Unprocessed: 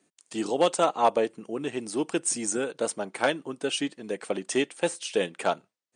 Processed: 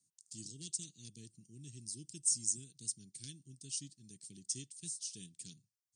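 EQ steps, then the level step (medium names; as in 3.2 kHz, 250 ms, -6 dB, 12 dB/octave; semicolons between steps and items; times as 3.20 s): elliptic band-stop 120–5200 Hz, stop band 70 dB; peaking EQ 420 Hz +15 dB 1.5 oct; peaking EQ 1.7 kHz +5.5 dB 0.29 oct; -3.0 dB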